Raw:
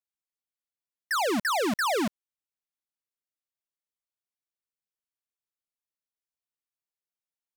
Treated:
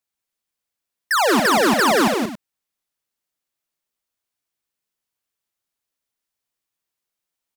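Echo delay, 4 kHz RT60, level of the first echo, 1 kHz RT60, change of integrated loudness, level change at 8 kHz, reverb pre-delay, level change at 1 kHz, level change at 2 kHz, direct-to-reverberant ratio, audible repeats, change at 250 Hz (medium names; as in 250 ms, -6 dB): 62 ms, no reverb, -9.0 dB, no reverb, +10.0 dB, +10.5 dB, no reverb, +10.5 dB, +10.5 dB, no reverb, 4, +10.5 dB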